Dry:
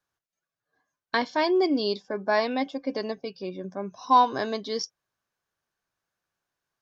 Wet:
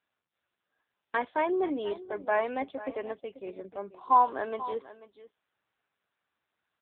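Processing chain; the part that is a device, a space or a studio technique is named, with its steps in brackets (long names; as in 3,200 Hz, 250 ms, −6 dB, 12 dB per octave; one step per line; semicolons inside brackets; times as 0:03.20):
0:01.53–0:02.27: high-pass filter 86 Hz 12 dB per octave
satellite phone (band-pass filter 360–3,200 Hz; single-tap delay 487 ms −15.5 dB; level −2 dB; AMR narrowband 6.7 kbit/s 8,000 Hz)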